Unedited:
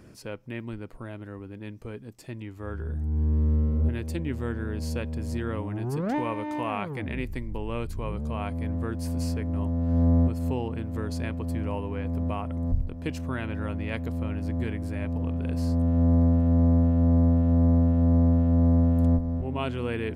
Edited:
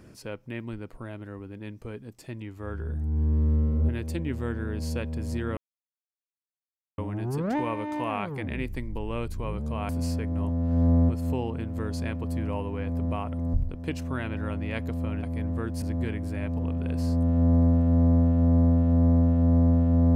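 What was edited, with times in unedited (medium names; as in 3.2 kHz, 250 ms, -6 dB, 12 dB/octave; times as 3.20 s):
5.57 s: insert silence 1.41 s
8.48–9.07 s: move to 14.41 s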